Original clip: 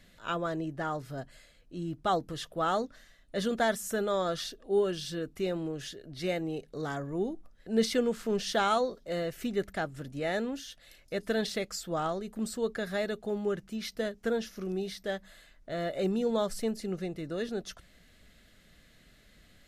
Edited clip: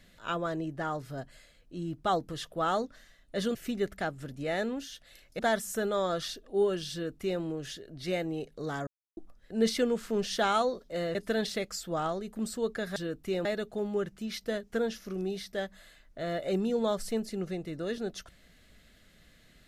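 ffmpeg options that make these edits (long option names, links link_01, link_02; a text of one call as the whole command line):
ffmpeg -i in.wav -filter_complex "[0:a]asplit=8[link_01][link_02][link_03][link_04][link_05][link_06][link_07][link_08];[link_01]atrim=end=3.552[link_09];[link_02]atrim=start=9.308:end=11.152[link_10];[link_03]atrim=start=3.548:end=7.03,asetpts=PTS-STARTPTS,afade=type=out:start_time=3.478:duration=0.004:curve=hsin[link_11];[link_04]atrim=start=7.03:end=7.33,asetpts=PTS-STARTPTS,volume=0[link_12];[link_05]atrim=start=7.33:end=9.312,asetpts=PTS-STARTPTS,afade=type=in:duration=0.004:curve=hsin[link_13];[link_06]atrim=start=11.148:end=12.962[link_14];[link_07]atrim=start=5.078:end=5.572[link_15];[link_08]atrim=start=12.958[link_16];[link_09][link_10]acrossfade=duration=0.004:curve1=hsin:curve2=hsin[link_17];[link_11][link_12][link_13]concat=n=3:v=0:a=1[link_18];[link_17][link_18]acrossfade=duration=0.004:curve1=hsin:curve2=hsin[link_19];[link_19][link_14]acrossfade=duration=0.004:curve1=hsin:curve2=hsin[link_20];[link_20][link_15]acrossfade=duration=0.004:curve1=hsin:curve2=hsin[link_21];[link_21][link_16]acrossfade=duration=0.004:curve1=hsin:curve2=hsin" out.wav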